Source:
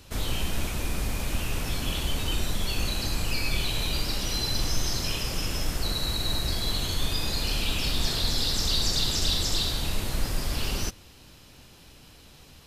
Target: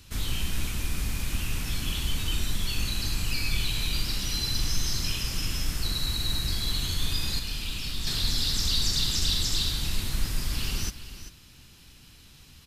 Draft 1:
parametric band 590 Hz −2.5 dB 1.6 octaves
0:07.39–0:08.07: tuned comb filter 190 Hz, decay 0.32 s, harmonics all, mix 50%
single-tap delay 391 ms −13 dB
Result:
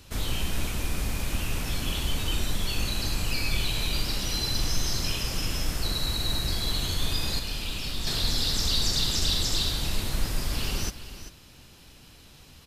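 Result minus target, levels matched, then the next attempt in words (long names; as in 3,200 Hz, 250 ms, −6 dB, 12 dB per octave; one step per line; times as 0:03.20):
500 Hz band +6.5 dB
parametric band 590 Hz −11.5 dB 1.6 octaves
0:07.39–0:08.07: tuned comb filter 190 Hz, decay 0.32 s, harmonics all, mix 50%
single-tap delay 391 ms −13 dB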